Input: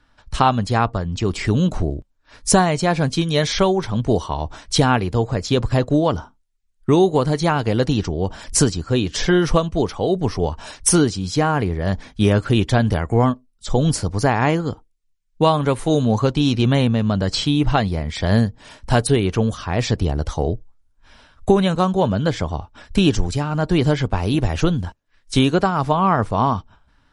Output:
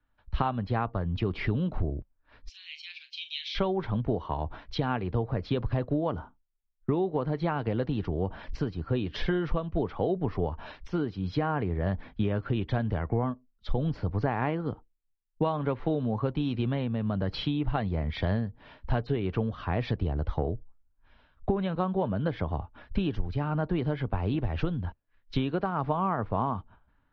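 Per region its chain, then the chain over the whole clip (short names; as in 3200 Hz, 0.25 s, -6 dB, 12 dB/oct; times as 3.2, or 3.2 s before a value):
2.49–3.55 Chebyshev high-pass 2500 Hz, order 4 + doubler 40 ms -10.5 dB
whole clip: compressor 12:1, threshold -22 dBFS; Bessel low-pass 2300 Hz, order 8; three-band expander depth 40%; gain -2 dB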